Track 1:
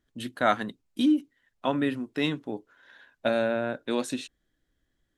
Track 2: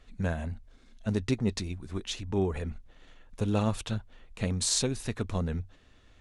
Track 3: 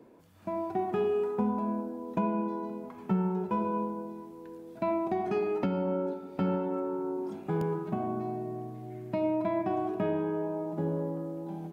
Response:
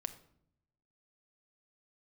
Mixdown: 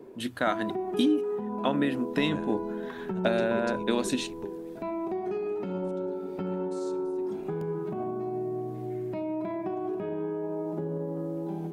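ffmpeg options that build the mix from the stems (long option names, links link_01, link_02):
-filter_complex "[0:a]dynaudnorm=framelen=140:gausssize=3:maxgain=13dB,bandreject=frequency=60:width_type=h:width=6,bandreject=frequency=120:width_type=h:width=6,acompressor=threshold=-17dB:ratio=4,volume=-6dB,asplit=2[link_01][link_02];[1:a]equalizer=frequency=81:width=1.5:gain=-12.5,adelay=2100,volume=-7.5dB,asplit=2[link_03][link_04];[link_04]volume=-17dB[link_05];[2:a]alimiter=level_in=5dB:limit=-24dB:level=0:latency=1:release=106,volume=-5dB,volume=1dB,asplit=2[link_06][link_07];[link_07]volume=-5.5dB[link_08];[link_02]apad=whole_len=366353[link_09];[link_03][link_09]sidechaingate=range=-33dB:threshold=-58dB:ratio=16:detection=peak[link_10];[link_10][link_06]amix=inputs=2:normalize=0,equalizer=frequency=390:width_type=o:width=0.25:gain=15,acompressor=threshold=-32dB:ratio=6,volume=0dB[link_11];[3:a]atrim=start_sample=2205[link_12];[link_05][link_08]amix=inputs=2:normalize=0[link_13];[link_13][link_12]afir=irnorm=-1:irlink=0[link_14];[link_01][link_11][link_14]amix=inputs=3:normalize=0"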